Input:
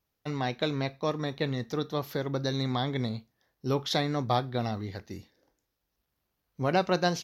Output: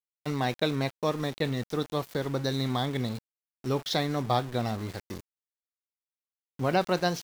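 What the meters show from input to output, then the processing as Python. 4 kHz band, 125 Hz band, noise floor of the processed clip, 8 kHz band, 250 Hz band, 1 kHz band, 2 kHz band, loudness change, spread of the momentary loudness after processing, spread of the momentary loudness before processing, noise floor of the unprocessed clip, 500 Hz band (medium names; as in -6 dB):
+0.5 dB, +0.5 dB, under -85 dBFS, +1.5 dB, +0.5 dB, +0.5 dB, +0.5 dB, +0.5 dB, 9 LU, 11 LU, -82 dBFS, +0.5 dB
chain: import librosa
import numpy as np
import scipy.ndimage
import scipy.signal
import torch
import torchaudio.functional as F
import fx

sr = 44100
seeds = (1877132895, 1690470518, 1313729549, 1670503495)

y = fx.rider(x, sr, range_db=4, speed_s=2.0)
y = np.where(np.abs(y) >= 10.0 ** (-38.5 / 20.0), y, 0.0)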